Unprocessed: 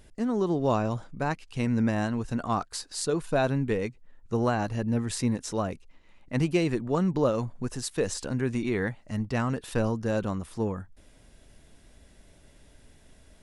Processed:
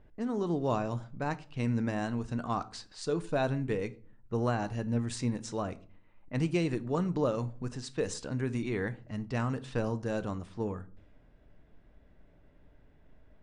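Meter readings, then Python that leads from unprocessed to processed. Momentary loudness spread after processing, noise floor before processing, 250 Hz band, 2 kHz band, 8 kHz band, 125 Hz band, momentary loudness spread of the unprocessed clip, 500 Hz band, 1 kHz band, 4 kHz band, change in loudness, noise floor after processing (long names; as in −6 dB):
7 LU, −57 dBFS, −5.0 dB, −5.0 dB, −8.5 dB, −3.5 dB, 7 LU, −4.5 dB, −4.5 dB, −6.0 dB, −4.5 dB, −60 dBFS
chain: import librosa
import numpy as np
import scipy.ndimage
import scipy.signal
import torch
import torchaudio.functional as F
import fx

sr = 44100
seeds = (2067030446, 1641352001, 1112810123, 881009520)

y = scipy.signal.sosfilt(scipy.signal.butter(16, 9800.0, 'lowpass', fs=sr, output='sos'), x)
y = fx.env_lowpass(y, sr, base_hz=1500.0, full_db=-24.5)
y = fx.room_shoebox(y, sr, seeds[0], volume_m3=410.0, walls='furnished', distance_m=0.46)
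y = y * librosa.db_to_amplitude(-5.0)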